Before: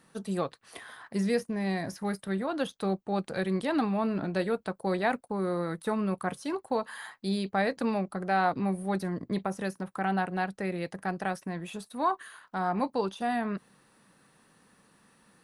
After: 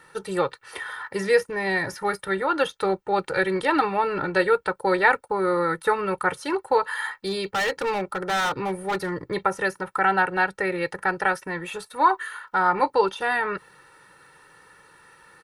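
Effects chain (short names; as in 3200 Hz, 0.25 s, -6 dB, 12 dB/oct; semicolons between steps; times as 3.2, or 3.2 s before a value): bell 1500 Hz +9.5 dB 1.6 oct; comb 2.2 ms, depth 86%; 7.15–9.28 overloaded stage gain 24.5 dB; gain +3 dB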